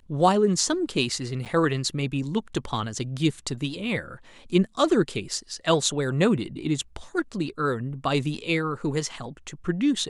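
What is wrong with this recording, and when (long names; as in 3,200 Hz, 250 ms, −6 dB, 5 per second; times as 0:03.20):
0:01.45–0:01.46: drop-out 7.8 ms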